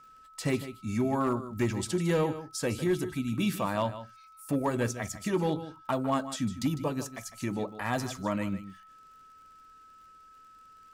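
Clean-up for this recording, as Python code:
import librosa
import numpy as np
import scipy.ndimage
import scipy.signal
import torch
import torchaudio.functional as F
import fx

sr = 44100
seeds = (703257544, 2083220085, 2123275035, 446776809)

y = fx.fix_declip(x, sr, threshold_db=-20.5)
y = fx.fix_declick_ar(y, sr, threshold=6.5)
y = fx.notch(y, sr, hz=1300.0, q=30.0)
y = fx.fix_echo_inverse(y, sr, delay_ms=153, level_db=-13.0)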